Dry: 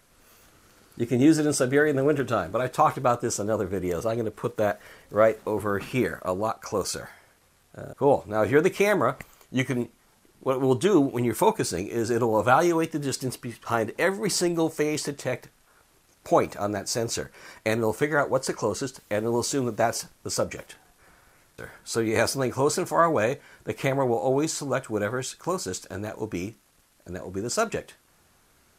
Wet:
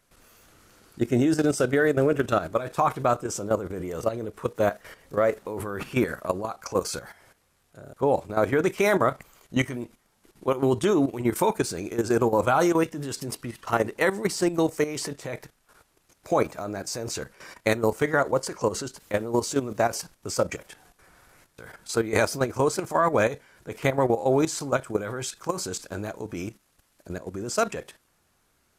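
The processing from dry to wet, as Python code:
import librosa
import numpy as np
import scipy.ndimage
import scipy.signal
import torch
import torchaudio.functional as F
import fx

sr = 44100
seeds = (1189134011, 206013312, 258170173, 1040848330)

y = fx.level_steps(x, sr, step_db=12)
y = y * librosa.db_to_amplitude(4.0)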